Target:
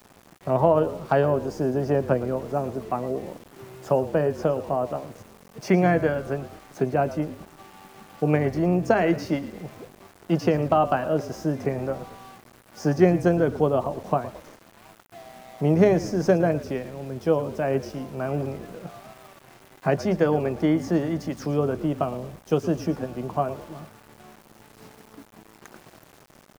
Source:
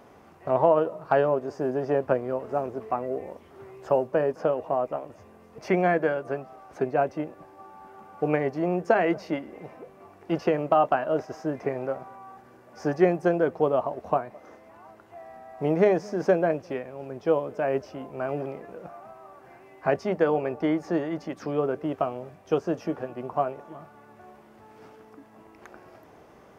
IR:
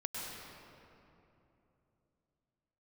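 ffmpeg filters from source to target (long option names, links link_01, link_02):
-filter_complex "[0:a]highpass=frequency=110:width=0.5412,highpass=frequency=110:width=1.3066,bass=frequency=250:gain=11,treble=frequency=4000:gain=11,asplit=5[link_01][link_02][link_03][link_04][link_05];[link_02]adelay=113,afreqshift=-48,volume=-15dB[link_06];[link_03]adelay=226,afreqshift=-96,volume=-23dB[link_07];[link_04]adelay=339,afreqshift=-144,volume=-30.9dB[link_08];[link_05]adelay=452,afreqshift=-192,volume=-38.9dB[link_09];[link_01][link_06][link_07][link_08][link_09]amix=inputs=5:normalize=0,aeval=exprs='val(0)*gte(abs(val(0)),0.00596)':channel_layout=same"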